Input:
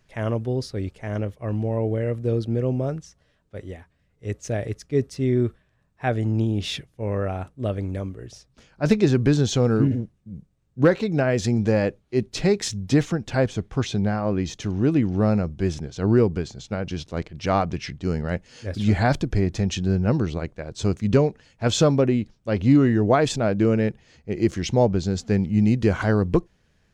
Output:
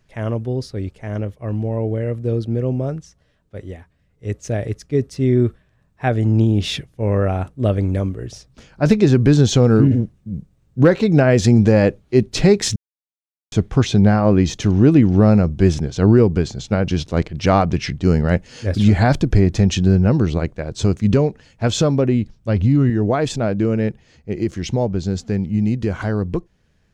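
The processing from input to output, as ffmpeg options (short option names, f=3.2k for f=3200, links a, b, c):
-filter_complex "[0:a]asettb=1/sr,asplit=3[a][b][c];[a]atrim=end=22.004[d];[b]atrim=start=22:end=22.9,asetpts=PTS-STARTPTS,afade=t=in:d=0.004:c=qsin,afade=t=out:st=0.896:d=0.004:c=qsin,asubboost=boost=8:cutoff=210[e];[c]atrim=start=22.896[f];[d][e]acrossfade=d=0.004:c1=hsin:c2=qsin[g];[g][f]acrossfade=d=0.004:c1=qsin:c2=hsin,asplit=3[h][i][j];[h]atrim=end=12.76,asetpts=PTS-STARTPTS,afade=t=out:st=12.756:d=0.004:c=hsin[k];[i]atrim=start=12.76:end=13.52,asetpts=PTS-STARTPTS,volume=0[l];[j]atrim=start=13.52,asetpts=PTS-STARTPTS,afade=t=in:d=0.004:c=hsin[m];[k][l][m]concat=n=3:v=0:a=1,lowshelf=f=390:g=3.5,alimiter=limit=-9.5dB:level=0:latency=1:release=253,dynaudnorm=f=750:g=17:m=10.5dB"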